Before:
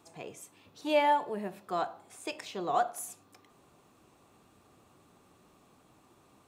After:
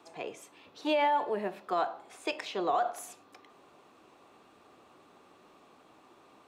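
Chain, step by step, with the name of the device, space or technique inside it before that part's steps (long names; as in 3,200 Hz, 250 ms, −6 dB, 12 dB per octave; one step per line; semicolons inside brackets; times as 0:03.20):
DJ mixer with the lows and highs turned down (three-way crossover with the lows and the highs turned down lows −14 dB, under 260 Hz, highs −12 dB, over 5,000 Hz; brickwall limiter −25.5 dBFS, peak gain reduction 10 dB)
level +5.5 dB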